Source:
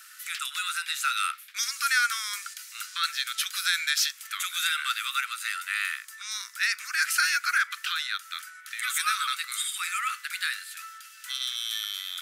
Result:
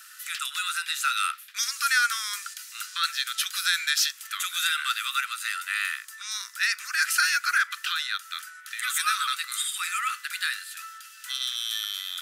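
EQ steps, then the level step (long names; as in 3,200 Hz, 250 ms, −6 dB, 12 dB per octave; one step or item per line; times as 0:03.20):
notch filter 2,200 Hz, Q 12
+1.5 dB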